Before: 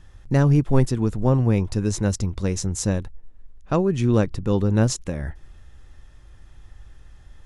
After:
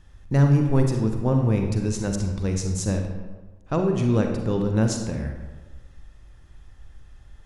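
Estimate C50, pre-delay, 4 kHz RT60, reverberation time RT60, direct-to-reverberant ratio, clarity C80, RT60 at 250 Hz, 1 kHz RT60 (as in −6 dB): 4.5 dB, 36 ms, 0.75 s, 1.2 s, 3.5 dB, 7.0 dB, 1.3 s, 1.2 s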